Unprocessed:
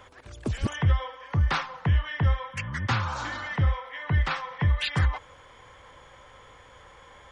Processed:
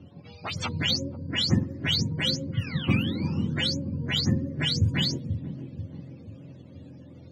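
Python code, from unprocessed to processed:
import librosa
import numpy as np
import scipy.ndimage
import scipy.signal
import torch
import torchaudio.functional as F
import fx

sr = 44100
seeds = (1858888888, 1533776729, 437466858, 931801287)

y = fx.octave_mirror(x, sr, pivot_hz=530.0)
y = fx.env_lowpass(y, sr, base_hz=2800.0, full_db=-24.5)
y = fx.echo_wet_lowpass(y, sr, ms=486, feedback_pct=47, hz=450.0, wet_db=-7)
y = y * librosa.db_to_amplitude(2.0)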